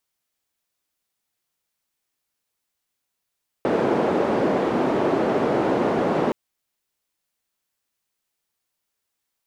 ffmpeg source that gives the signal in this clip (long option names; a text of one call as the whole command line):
ffmpeg -f lavfi -i "anoisesrc=color=white:duration=2.67:sample_rate=44100:seed=1,highpass=frequency=270,lowpass=frequency=450,volume=3.6dB" out.wav